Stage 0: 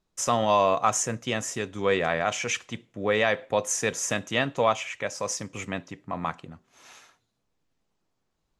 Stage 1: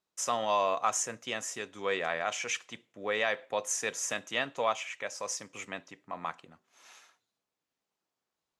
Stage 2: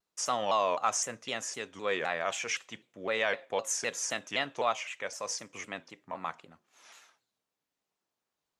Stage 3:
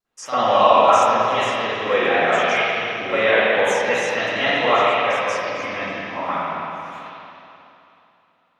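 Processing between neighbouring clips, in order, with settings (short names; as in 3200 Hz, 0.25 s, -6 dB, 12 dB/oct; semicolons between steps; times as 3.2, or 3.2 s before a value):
HPF 580 Hz 6 dB/oct; gain -4.5 dB
shaped vibrato saw down 3.9 Hz, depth 160 cents
reverb RT60 3.0 s, pre-delay 41 ms, DRR -18 dB; gain -2.5 dB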